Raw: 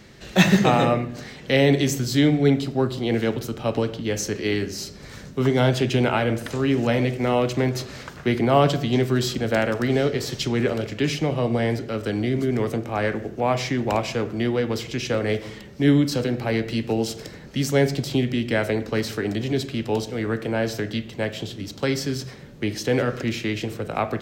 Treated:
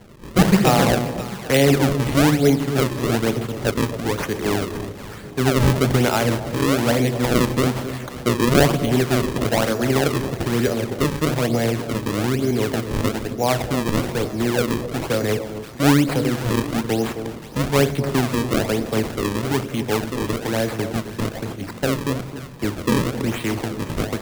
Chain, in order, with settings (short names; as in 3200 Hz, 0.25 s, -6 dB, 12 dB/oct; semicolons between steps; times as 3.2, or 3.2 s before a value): decimation with a swept rate 35×, swing 160% 1.1 Hz; echo with dull and thin repeats by turns 0.264 s, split 830 Hz, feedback 60%, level -10 dB; gain +2 dB